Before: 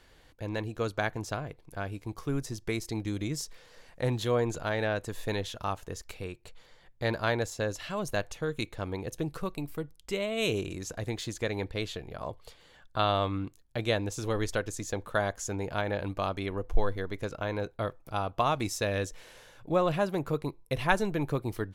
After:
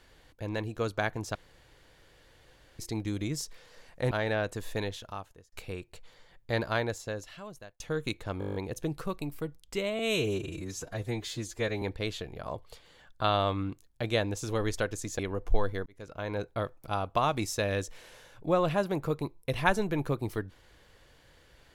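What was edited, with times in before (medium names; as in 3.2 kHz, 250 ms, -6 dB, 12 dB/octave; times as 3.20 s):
1.35–2.79 s: room tone
4.11–4.63 s: delete
5.21–6.04 s: fade out
7.13–8.32 s: fade out
8.91 s: stutter 0.02 s, 9 plays
10.35–11.57 s: stretch 1.5×
14.94–16.42 s: delete
17.09–17.63 s: fade in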